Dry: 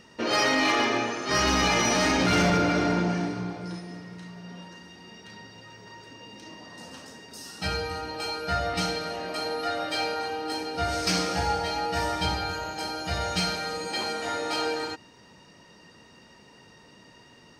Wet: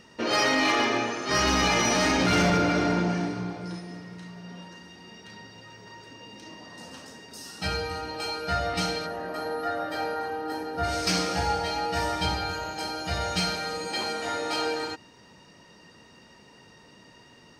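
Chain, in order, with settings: spectral gain 9.06–10.84, 2000–11000 Hz -10 dB

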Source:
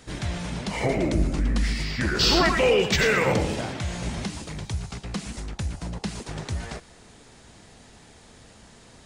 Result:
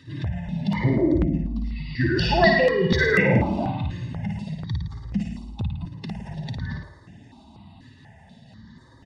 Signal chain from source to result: spectral contrast raised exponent 1.8; dynamic EQ 410 Hz, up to +6 dB, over -35 dBFS, Q 0.8; HPF 110 Hz 12 dB/oct; resonant high shelf 5300 Hz -9 dB, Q 1.5; notch 740 Hz, Q 23; comb 1.1 ms, depth 80%; flutter echo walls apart 9.4 m, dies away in 0.77 s; step phaser 4.1 Hz 200–4100 Hz; gain +3 dB

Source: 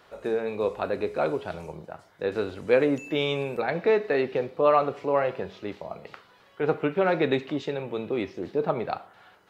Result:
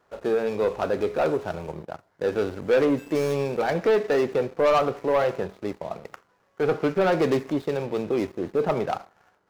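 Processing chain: median filter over 15 samples; sample leveller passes 2; gain -3 dB

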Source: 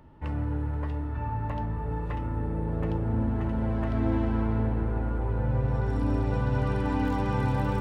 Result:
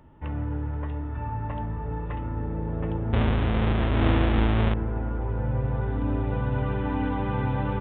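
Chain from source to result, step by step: 3.13–4.74 half-waves squared off; downsampling 8000 Hz

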